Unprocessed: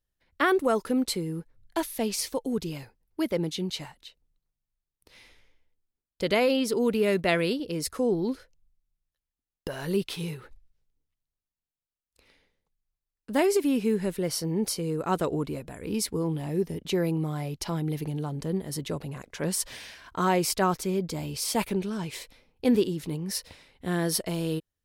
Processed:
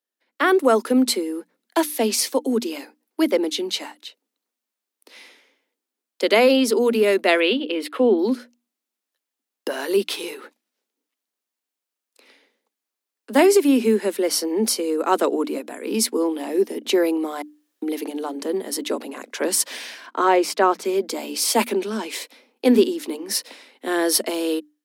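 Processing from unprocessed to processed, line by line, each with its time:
0:07.40–0:08.19: high shelf with overshoot 4,400 Hz −12 dB, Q 3
0:17.42–0:17.82: fill with room tone
0:20.06–0:20.85: low-pass filter 2,600 Hz 6 dB per octave
whole clip: Butterworth high-pass 220 Hz 96 dB per octave; mains-hum notches 60/120/180/240/300 Hz; automatic gain control gain up to 9 dB

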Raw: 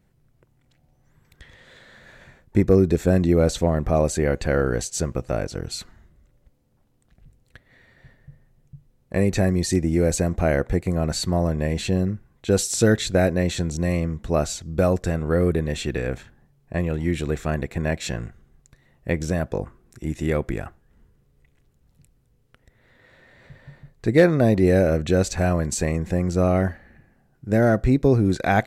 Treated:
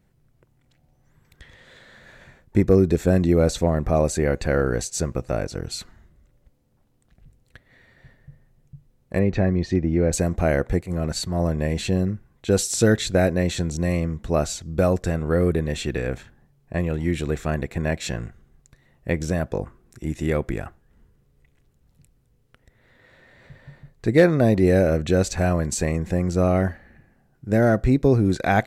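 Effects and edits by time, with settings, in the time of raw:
0:03.38–0:05.66: notch filter 3,100 Hz
0:09.19–0:10.13: high-frequency loss of the air 250 metres
0:10.81–0:11.40: transient designer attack −11 dB, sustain −5 dB

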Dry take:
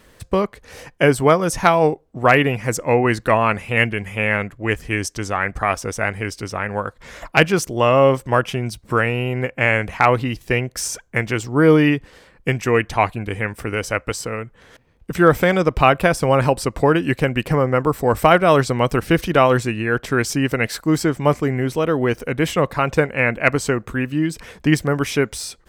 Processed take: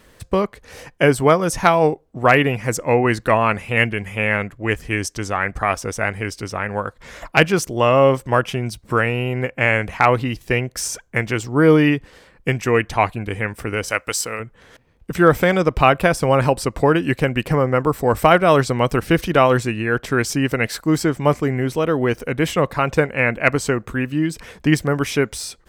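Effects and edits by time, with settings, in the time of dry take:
0:13.88–0:14.40: spectral tilt +2.5 dB per octave

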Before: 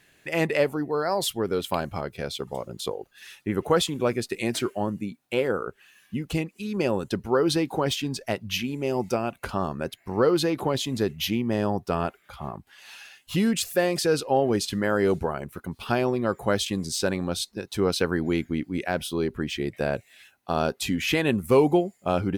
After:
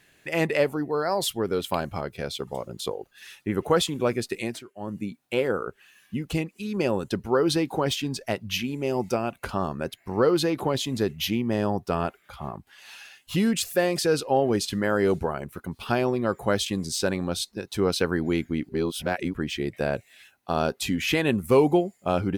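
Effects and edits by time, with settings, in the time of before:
0:04.36–0:05.02: duck −19 dB, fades 0.28 s
0:18.69–0:19.34: reverse

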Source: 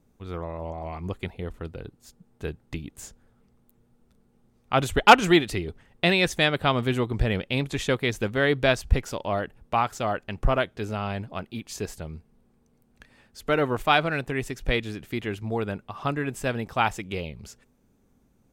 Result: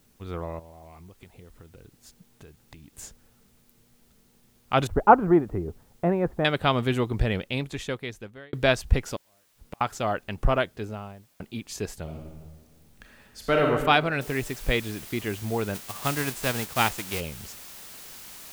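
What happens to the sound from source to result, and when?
0:00.59–0:02.93: downward compressor 10 to 1, threshold −44 dBFS
0:04.87–0:06.45: low-pass filter 1,200 Hz 24 dB per octave
0:07.16–0:08.53: fade out
0:09.16–0:09.81: gate with flip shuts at −28 dBFS, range −41 dB
0:10.56–0:11.40: fade out and dull
0:12.02–0:13.70: thrown reverb, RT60 1.4 s, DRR 0 dB
0:14.21: noise floor change −66 dB −44 dB
0:15.74–0:17.19: spectral envelope flattened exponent 0.6

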